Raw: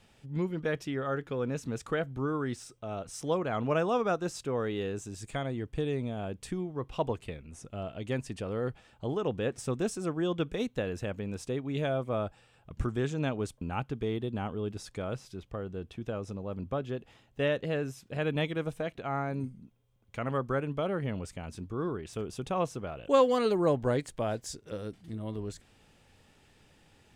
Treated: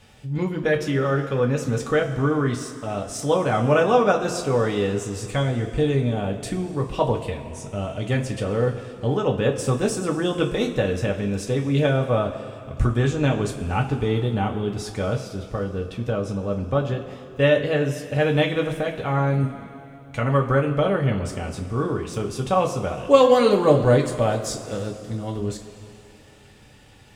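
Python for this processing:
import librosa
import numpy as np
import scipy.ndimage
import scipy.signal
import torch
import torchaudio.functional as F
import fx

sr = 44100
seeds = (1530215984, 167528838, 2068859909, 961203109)

y = fx.rev_double_slope(x, sr, seeds[0], early_s=0.2, late_s=2.8, knee_db=-18, drr_db=0.0)
y = F.gain(torch.from_numpy(y), 7.5).numpy()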